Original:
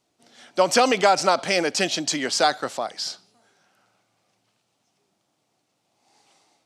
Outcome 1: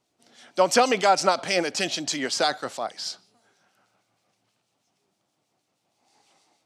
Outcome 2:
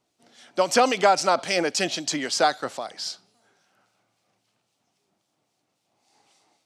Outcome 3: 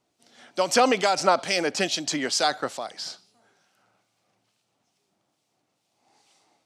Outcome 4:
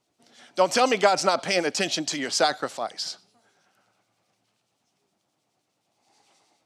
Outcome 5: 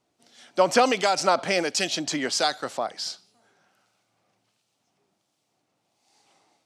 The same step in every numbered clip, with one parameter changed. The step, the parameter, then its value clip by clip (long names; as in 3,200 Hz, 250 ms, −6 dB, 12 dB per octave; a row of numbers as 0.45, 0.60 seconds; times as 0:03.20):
two-band tremolo in antiphase, speed: 6.3, 3.7, 2.3, 9.5, 1.4 Hertz